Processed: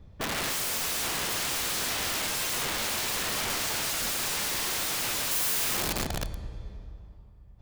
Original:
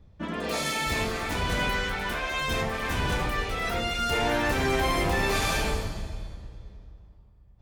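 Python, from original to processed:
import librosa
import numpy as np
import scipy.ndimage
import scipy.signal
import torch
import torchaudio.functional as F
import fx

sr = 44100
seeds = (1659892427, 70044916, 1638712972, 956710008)

y = (np.mod(10.0 ** (29.0 / 20.0) * x + 1.0, 2.0) - 1.0) / 10.0 ** (29.0 / 20.0)
y = fx.high_shelf(y, sr, hz=9700.0, db=5.5, at=(5.31, 5.99))
y = y * librosa.db_to_amplitude(3.5)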